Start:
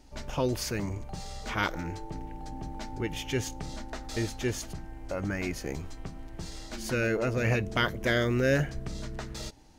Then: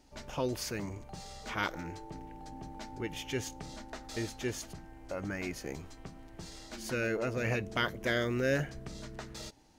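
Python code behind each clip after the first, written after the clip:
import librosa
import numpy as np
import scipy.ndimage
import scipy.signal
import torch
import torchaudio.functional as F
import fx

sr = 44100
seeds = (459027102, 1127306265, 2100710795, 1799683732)

y = fx.low_shelf(x, sr, hz=100.0, db=-8.0)
y = y * 10.0 ** (-4.0 / 20.0)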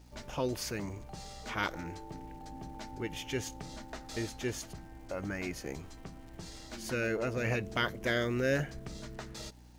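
y = fx.dmg_crackle(x, sr, seeds[0], per_s=600.0, level_db=-56.0)
y = fx.add_hum(y, sr, base_hz=60, snr_db=19)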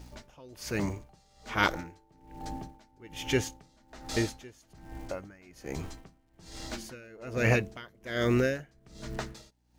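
y = x * 10.0 ** (-27 * (0.5 - 0.5 * np.cos(2.0 * np.pi * 1.2 * np.arange(len(x)) / sr)) / 20.0)
y = y * 10.0 ** (8.5 / 20.0)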